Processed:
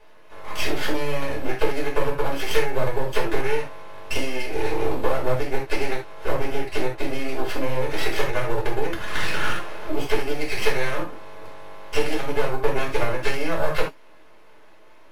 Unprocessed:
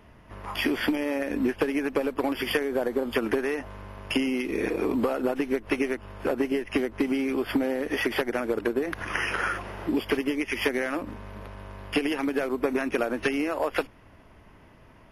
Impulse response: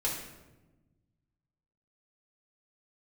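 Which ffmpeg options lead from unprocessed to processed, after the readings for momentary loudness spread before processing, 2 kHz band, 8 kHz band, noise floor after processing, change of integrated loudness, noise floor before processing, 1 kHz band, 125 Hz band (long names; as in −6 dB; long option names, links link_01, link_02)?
6 LU, +2.0 dB, +6.5 dB, −45 dBFS, +1.0 dB, −53 dBFS, +5.0 dB, +10.0 dB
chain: -filter_complex "[0:a]highpass=frequency=330:width=0.5412,highpass=frequency=330:width=1.3066,aeval=exprs='max(val(0),0)':channel_layout=same[link_01];[1:a]atrim=start_sample=2205,atrim=end_sample=3969[link_02];[link_01][link_02]afir=irnorm=-1:irlink=0,volume=2dB"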